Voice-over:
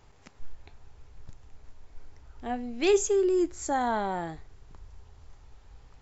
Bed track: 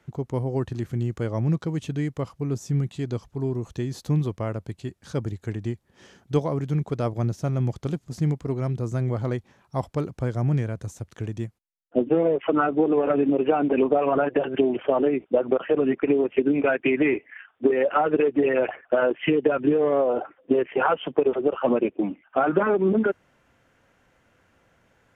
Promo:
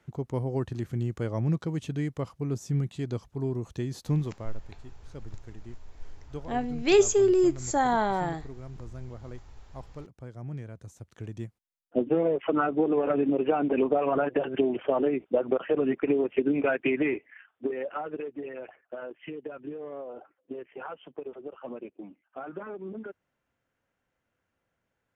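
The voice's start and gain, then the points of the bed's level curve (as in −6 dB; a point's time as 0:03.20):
4.05 s, +3.0 dB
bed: 0:04.16 −3.5 dB
0:04.64 −16.5 dB
0:10.31 −16.5 dB
0:11.69 −4 dB
0:16.87 −4 dB
0:18.59 −18 dB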